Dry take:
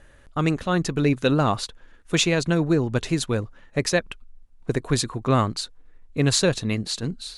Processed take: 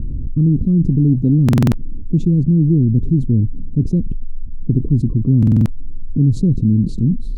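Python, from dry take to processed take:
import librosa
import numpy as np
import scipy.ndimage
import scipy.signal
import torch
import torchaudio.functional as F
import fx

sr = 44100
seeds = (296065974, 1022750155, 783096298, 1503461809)

y = scipy.signal.sosfilt(scipy.signal.cheby2(4, 50, 680.0, 'lowpass', fs=sr, output='sos'), x)
y = fx.buffer_glitch(y, sr, at_s=(1.44, 5.38), block=2048, repeats=5)
y = fx.env_flatten(y, sr, amount_pct=70)
y = y * librosa.db_to_amplitude(8.5)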